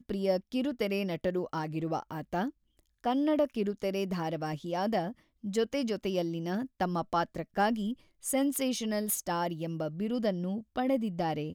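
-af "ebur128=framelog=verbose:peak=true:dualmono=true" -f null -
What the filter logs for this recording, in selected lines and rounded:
Integrated loudness:
  I:         -29.2 LUFS
  Threshold: -39.3 LUFS
Loudness range:
  LRA:         1.4 LU
  Threshold: -49.3 LUFS
  LRA low:   -30.0 LUFS
  LRA high:  -28.6 LUFS
True peak:
  Peak:      -16.6 dBFS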